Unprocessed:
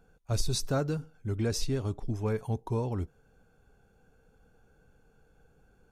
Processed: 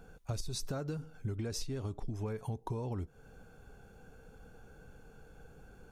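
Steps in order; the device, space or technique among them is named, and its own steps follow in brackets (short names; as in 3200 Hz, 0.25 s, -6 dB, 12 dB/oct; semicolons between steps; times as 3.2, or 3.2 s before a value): serial compression, leveller first (compressor 2.5:1, threshold -32 dBFS, peak gain reduction 7.5 dB; compressor 6:1, threshold -43 dBFS, peak gain reduction 14 dB); gain +8 dB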